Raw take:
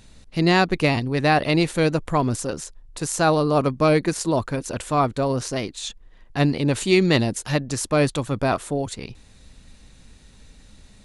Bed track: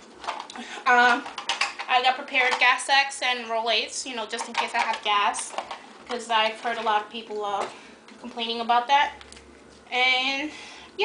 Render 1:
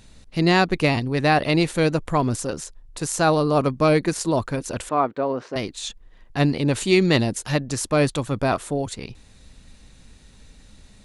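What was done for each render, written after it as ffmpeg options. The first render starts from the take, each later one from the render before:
-filter_complex "[0:a]asettb=1/sr,asplit=3[s0][s1][s2];[s0]atrim=end=4.894[s3];[s1]atrim=start=4.89:end=5.56,asetpts=PTS-STARTPTS,afade=t=in:d=0.004:c=qsin,afade=t=out:st=0.666:d=0.004:c=qsin,highpass=270,lowpass=2000[s4];[s2]atrim=start=5.556[s5];[s3][s4]acrossfade=d=0.004:c1=hsin:c2=qsin[s6];[s6][s5]acrossfade=d=0.004:c1=qsin:c2=hsin"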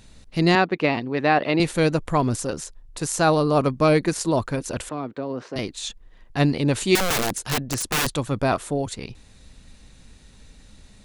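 -filter_complex "[0:a]asettb=1/sr,asplit=3[s0][s1][s2];[s0]atrim=end=0.554[s3];[s1]atrim=start=0.55:end=1.6,asetpts=PTS-STARTPTS,afade=t=in:d=0.004:c=qsin,afade=t=out:st=1.046:d=0.004:c=qsin,highpass=210,lowpass=3100[s4];[s2]atrim=start=1.596[s5];[s3][s4]acrossfade=d=0.004:c1=hsin:c2=qsin[s6];[s6][s5]acrossfade=d=0.004:c1=qsin:c2=hsin,asettb=1/sr,asplit=3[s7][s8][s9];[s7]atrim=end=4.774[s10];[s8]atrim=start=4.77:end=5.59,asetpts=PTS-STARTPTS,afade=t=in:d=0.004:c=qsin,afade=t=out:st=0.816:d=0.004:c=qsin,acrossover=split=340|3000[s11][s12][s13];[s12]acompressor=threshold=0.0282:ratio=6:attack=3.2:release=140:knee=2.83:detection=peak[s14];[s11][s14][s13]amix=inputs=3:normalize=0[s15];[s9]atrim=start=5.586[s16];[s10][s15]acrossfade=d=0.004:c1=hsin:c2=qsin[s17];[s17][s16]acrossfade=d=0.004:c1=qsin:c2=hsin,asettb=1/sr,asplit=3[s18][s19][s20];[s18]atrim=end=6.954[s21];[s19]atrim=start=6.95:end=8.07,asetpts=PTS-STARTPTS,afade=t=in:d=0.004:c=qsin,afade=t=out:st=1.116:d=0.004:c=qsin,aeval=exprs='(mod(7.08*val(0)+1,2)-1)/7.08':c=same[s22];[s20]atrim=start=8.066[s23];[s21][s22]acrossfade=d=0.004:c1=hsin:c2=qsin[s24];[s24][s23]acrossfade=d=0.004:c1=qsin:c2=hsin"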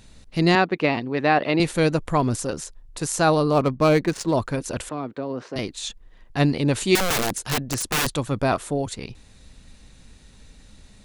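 -filter_complex "[0:a]asettb=1/sr,asplit=3[s0][s1][s2];[s0]atrim=end=3.524[s3];[s1]atrim=start=3.52:end=4.34,asetpts=PTS-STARTPTS,afade=t=in:d=0.004:c=qsin,afade=t=out:st=0.816:d=0.004:c=qsin,adynamicsmooth=sensitivity=5.5:basefreq=2200[s4];[s2]atrim=start=4.336[s5];[s3][s4]acrossfade=d=0.004:c1=hsin:c2=qsin[s6];[s6][s5]acrossfade=d=0.004:c1=qsin:c2=hsin"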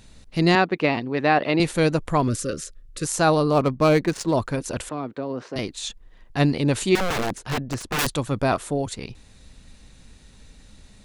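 -filter_complex "[0:a]asettb=1/sr,asplit=3[s0][s1][s2];[s0]atrim=end=2.284[s3];[s1]atrim=start=2.28:end=3.05,asetpts=PTS-STARTPTS,afade=t=in:d=0.004:c=qsin,afade=t=out:st=0.766:d=0.004:c=qsin,asuperstop=centerf=830:order=12:qfactor=1.7[s4];[s2]atrim=start=3.046[s5];[s3][s4]acrossfade=d=0.004:c1=hsin:c2=qsin[s6];[s6][s5]acrossfade=d=0.004:c1=qsin:c2=hsin,asettb=1/sr,asplit=3[s7][s8][s9];[s7]atrim=end=6.894[s10];[s8]atrim=start=6.89:end=7.99,asetpts=PTS-STARTPTS,afade=t=in:d=0.004:c=qsin,afade=t=out:st=1.096:d=0.004:c=qsin,lowpass=f=2300:p=1[s11];[s9]atrim=start=7.986[s12];[s10][s11]acrossfade=d=0.004:c1=hsin:c2=qsin[s13];[s13][s12]acrossfade=d=0.004:c1=qsin:c2=hsin"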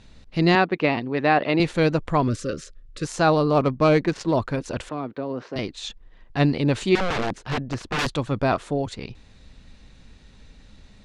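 -af "lowpass=4800"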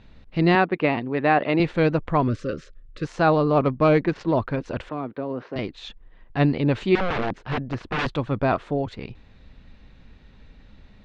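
-af "lowpass=3000"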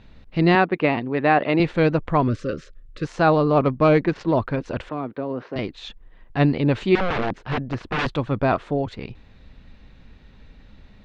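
-af "volume=1.19"

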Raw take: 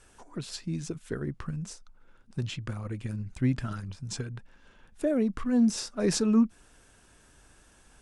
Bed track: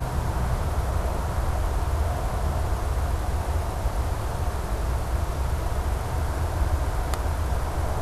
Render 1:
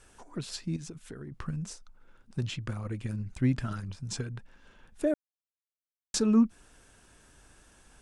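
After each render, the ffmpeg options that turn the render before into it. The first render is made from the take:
-filter_complex "[0:a]asettb=1/sr,asplit=3[s0][s1][s2];[s0]atrim=end=0.764[s3];[s1]atrim=start=0.76:end=1.32,asetpts=PTS-STARTPTS,afade=t=in:d=0.004:c=qsin,afade=t=out:st=0.556:d=0.004:c=qsin,acompressor=threshold=0.0112:ratio=5:attack=3.2:release=140:knee=1:detection=peak[s4];[s2]atrim=start=1.316[s5];[s3][s4]acrossfade=d=0.004:c1=hsin:c2=qsin[s6];[s6][s5]acrossfade=d=0.004:c1=qsin:c2=hsin,asplit=3[s7][s8][s9];[s7]atrim=end=5.14,asetpts=PTS-STARTPTS,afade=t=out:st=5.136:d=0.004:c=hsin[s10];[s8]atrim=start=5.14:end=6.14,asetpts=PTS-STARTPTS,volume=0[s11];[s9]atrim=start=6.14,asetpts=PTS-STARTPTS,afade=t=in:d=0.004:c=hsin[s12];[s10][s11][s12]concat=n=3:v=0:a=1"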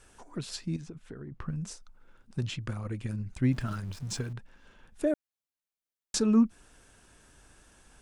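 -filter_complex "[0:a]asettb=1/sr,asplit=3[s0][s1][s2];[s0]atrim=end=0.814[s3];[s1]atrim=start=0.81:end=1.56,asetpts=PTS-STARTPTS,afade=t=in:d=0.004:c=qsin,afade=t=out:st=0.746:d=0.004:c=qsin,lowpass=f=1900:p=1[s4];[s2]atrim=start=1.556[s5];[s3][s4]acrossfade=d=0.004:c1=hsin:c2=qsin[s6];[s6][s5]acrossfade=d=0.004:c1=qsin:c2=hsin,asettb=1/sr,asplit=3[s7][s8][s9];[s7]atrim=end=3.524[s10];[s8]atrim=start=3.52:end=4.33,asetpts=PTS-STARTPTS,afade=t=in:d=0.004:c=qsin,afade=t=out:st=0.806:d=0.004:c=qsin,aeval=exprs='val(0)+0.5*0.00473*sgn(val(0))':c=same[s11];[s9]atrim=start=4.326[s12];[s10][s11]acrossfade=d=0.004:c1=hsin:c2=qsin[s13];[s13][s12]acrossfade=d=0.004:c1=qsin:c2=hsin"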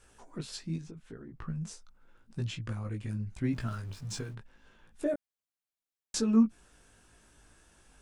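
-af "flanger=delay=17.5:depth=2:speed=0.8"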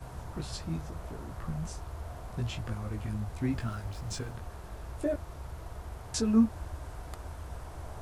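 -filter_complex "[1:a]volume=0.158[s0];[0:a][s0]amix=inputs=2:normalize=0"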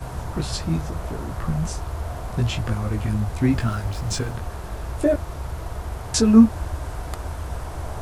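-af "volume=3.76"

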